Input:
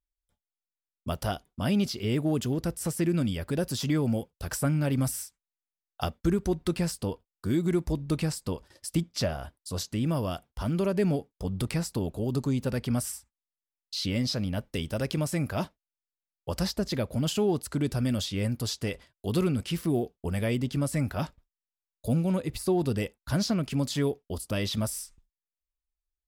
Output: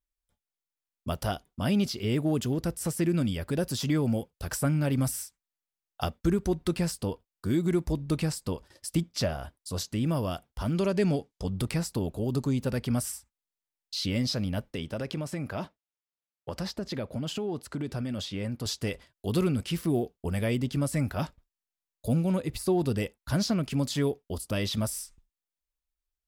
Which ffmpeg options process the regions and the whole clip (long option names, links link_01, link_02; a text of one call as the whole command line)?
ffmpeg -i in.wav -filter_complex "[0:a]asettb=1/sr,asplit=3[link_01][link_02][link_03];[link_01]atrim=end=10.754[link_04];[link_02]atrim=start=10.75:end=11.5,asetpts=PTS-STARTPTS,afade=type=in:duration=0.004:curve=qsin,afade=type=out:start_time=0.746:duration=0.004:curve=qsin,lowpass=6700,highshelf=frequency=3900:gain=10[link_05];[link_03]atrim=start=11.496[link_06];[link_04][link_05]acrossfade=duration=0.004:curve1=hsin:curve2=qsin[link_07];[link_07][link_06]acrossfade=duration=0.004:curve1=qsin:curve2=hsin,asettb=1/sr,asplit=3[link_08][link_09][link_10];[link_08]atrim=end=14.724[link_11];[link_09]atrim=start=14.72:end=18.66,asetpts=PTS-STARTPTS,afade=type=in:duration=0.004:curve=qsin,afade=type=out:start_time=3.936:duration=0.004:curve=qsin,highpass=frequency=130:poles=1,highshelf=frequency=5900:gain=-11.5,acompressor=threshold=-28dB:ratio=6:attack=3.2:release=140:knee=1:detection=peak[link_12];[link_10]atrim=start=18.656[link_13];[link_11][link_12]acrossfade=duration=0.004:curve1=hsin:curve2=qsin[link_14];[link_14][link_13]acrossfade=duration=0.004:curve1=qsin:curve2=hsin" out.wav